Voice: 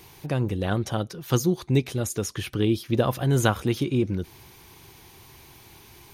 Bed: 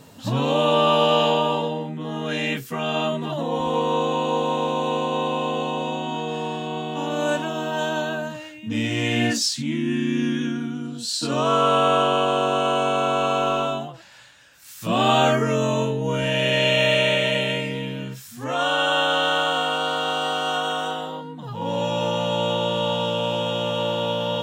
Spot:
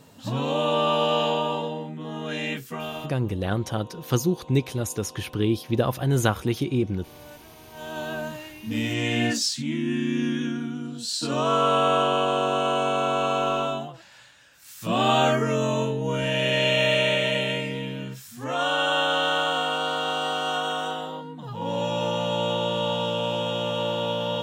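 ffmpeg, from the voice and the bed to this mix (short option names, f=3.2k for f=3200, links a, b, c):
-filter_complex "[0:a]adelay=2800,volume=-0.5dB[a];[1:a]volume=16.5dB,afade=t=out:st=2.72:d=0.43:silence=0.112202,afade=t=in:st=7.71:d=0.54:silence=0.0891251[b];[a][b]amix=inputs=2:normalize=0"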